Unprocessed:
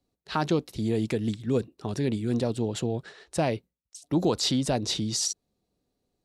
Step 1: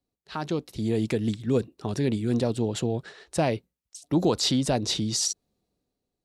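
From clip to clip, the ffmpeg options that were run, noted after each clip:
-af "dynaudnorm=f=150:g=9:m=8.5dB,volume=-6.5dB"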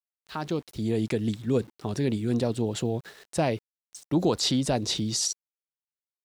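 -af "aeval=exprs='val(0)*gte(abs(val(0)),0.00376)':c=same,volume=-1dB"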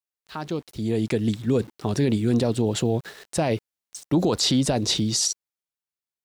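-af "dynaudnorm=f=250:g=9:m=6dB,alimiter=limit=-12dB:level=0:latency=1:release=21"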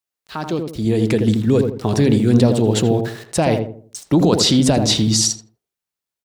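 -filter_complex "[0:a]asplit=2[a][b];[b]adelay=82,lowpass=f=990:p=1,volume=-4dB,asplit=2[c][d];[d]adelay=82,lowpass=f=990:p=1,volume=0.37,asplit=2[e][f];[f]adelay=82,lowpass=f=990:p=1,volume=0.37,asplit=2[g][h];[h]adelay=82,lowpass=f=990:p=1,volume=0.37,asplit=2[i][j];[j]adelay=82,lowpass=f=990:p=1,volume=0.37[k];[a][c][e][g][i][k]amix=inputs=6:normalize=0,volume=6dB"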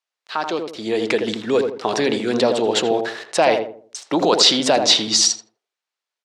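-af "highpass=560,lowpass=5.3k,volume=5.5dB"

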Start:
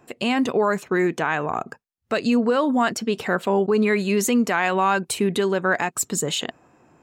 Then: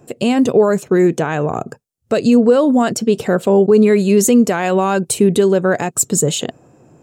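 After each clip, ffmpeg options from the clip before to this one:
-af "equalizer=f=125:t=o:w=1:g=8,equalizer=f=500:t=o:w=1:g=5,equalizer=f=1k:t=o:w=1:g=-6,equalizer=f=2k:t=o:w=1:g=-7,equalizer=f=4k:t=o:w=1:g=-3,equalizer=f=8k:t=o:w=1:g=4,volume=6dB"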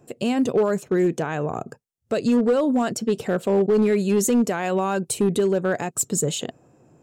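-af "asoftclip=type=hard:threshold=-6dB,volume=-7.5dB"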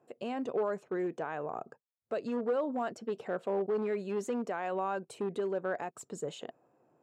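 -af "bandpass=f=900:t=q:w=0.75:csg=0,volume=-8dB"

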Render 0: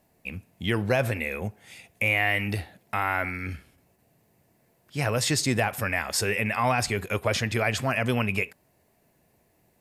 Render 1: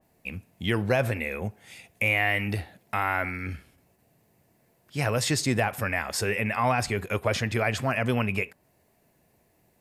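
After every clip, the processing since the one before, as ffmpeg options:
-af "adynamicequalizer=threshold=0.0112:dfrequency=2400:dqfactor=0.7:tfrequency=2400:tqfactor=0.7:attack=5:release=100:ratio=0.375:range=2:mode=cutabove:tftype=highshelf"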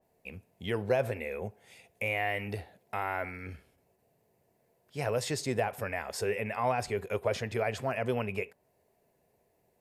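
-af "superequalizer=7b=2.51:8b=2:9b=1.58,volume=-9dB"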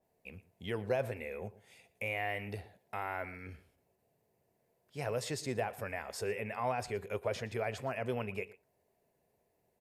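-filter_complex "[0:a]asplit=2[a][b];[b]adelay=116.6,volume=-19dB,highshelf=f=4k:g=-2.62[c];[a][c]amix=inputs=2:normalize=0,volume=-5dB"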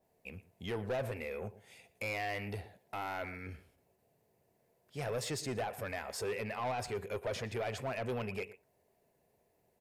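-af "asoftclip=type=tanh:threshold=-33.5dB,volume=2.5dB"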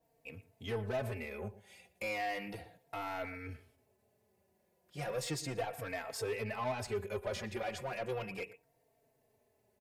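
-filter_complex "[0:a]asplit=2[a][b];[b]adelay=3.9,afreqshift=-0.35[c];[a][c]amix=inputs=2:normalize=1,volume=2.5dB"

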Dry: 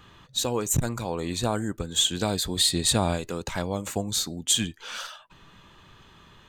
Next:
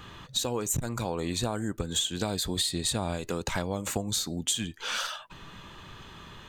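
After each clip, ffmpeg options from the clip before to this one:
-af "acompressor=threshold=-33dB:ratio=6,volume=6dB"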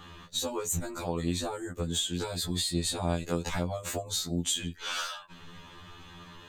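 -af "afftfilt=real='re*2*eq(mod(b,4),0)':imag='im*2*eq(mod(b,4),0)':win_size=2048:overlap=0.75"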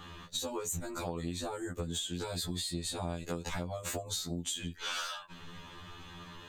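-af "acompressor=threshold=-33dB:ratio=6"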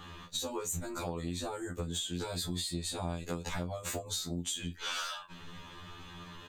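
-filter_complex "[0:a]asplit=2[a][b];[b]adelay=34,volume=-14dB[c];[a][c]amix=inputs=2:normalize=0"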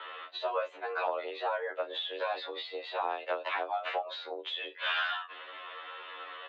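-af "highpass=f=380:t=q:w=0.5412,highpass=f=380:t=q:w=1.307,lowpass=f=3.1k:t=q:w=0.5176,lowpass=f=3.1k:t=q:w=0.7071,lowpass=f=3.1k:t=q:w=1.932,afreqshift=120,volume=8dB"

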